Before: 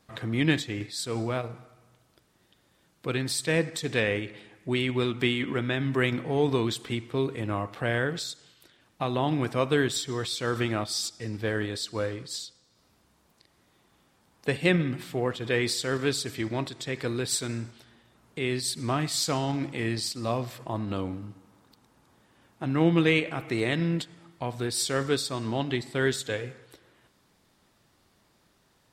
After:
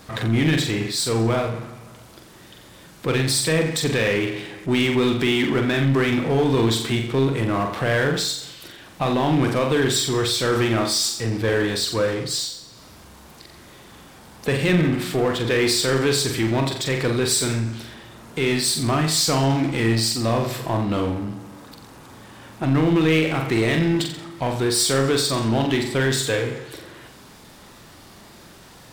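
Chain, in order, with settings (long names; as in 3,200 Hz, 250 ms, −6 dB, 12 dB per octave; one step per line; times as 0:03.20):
brickwall limiter −17 dBFS, peak gain reduction 7 dB
flutter between parallel walls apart 7.6 metres, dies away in 0.42 s
power curve on the samples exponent 0.7
level +4 dB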